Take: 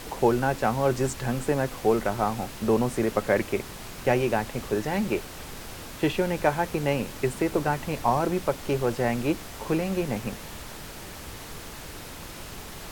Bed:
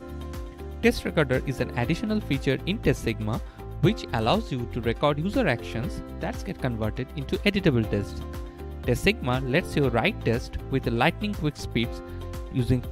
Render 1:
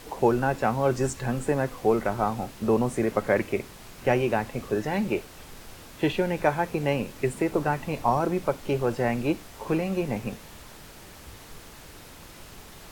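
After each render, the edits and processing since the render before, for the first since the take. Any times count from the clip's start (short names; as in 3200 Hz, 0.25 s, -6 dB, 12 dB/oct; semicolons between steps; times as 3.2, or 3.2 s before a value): noise print and reduce 6 dB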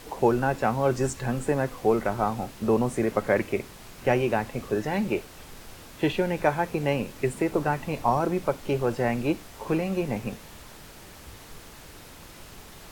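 nothing audible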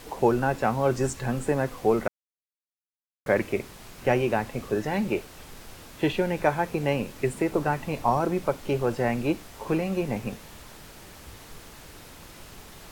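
2.08–3.26 mute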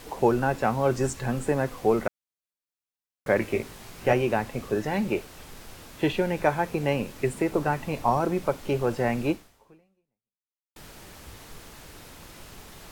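3.4–4.13 doubler 18 ms -5 dB; 9.3–10.76 fade out exponential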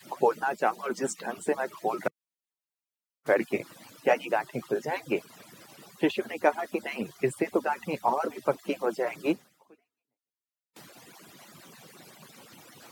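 median-filter separation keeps percussive; HPF 140 Hz 24 dB/oct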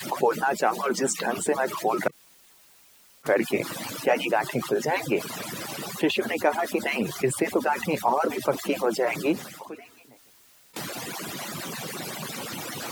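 fast leveller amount 50%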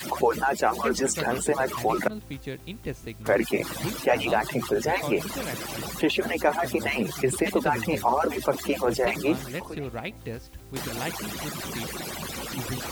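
add bed -11 dB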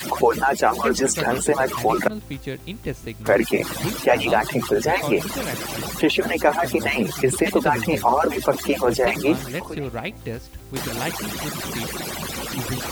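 gain +5 dB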